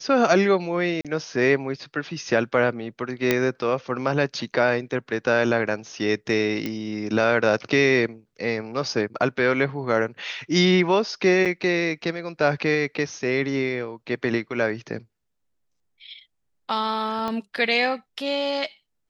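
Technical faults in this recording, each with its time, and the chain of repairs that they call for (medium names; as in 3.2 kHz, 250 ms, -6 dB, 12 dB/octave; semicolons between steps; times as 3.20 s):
1.01–1.05 s: dropout 37 ms
3.31 s: pop -5 dBFS
6.66 s: pop -14 dBFS
11.45–11.46 s: dropout 7.3 ms
17.28 s: pop -16 dBFS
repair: de-click; interpolate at 1.01 s, 37 ms; interpolate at 11.45 s, 7.3 ms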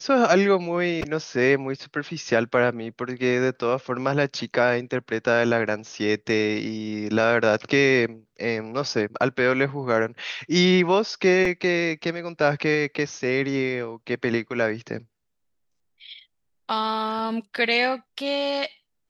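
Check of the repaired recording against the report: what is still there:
17.28 s: pop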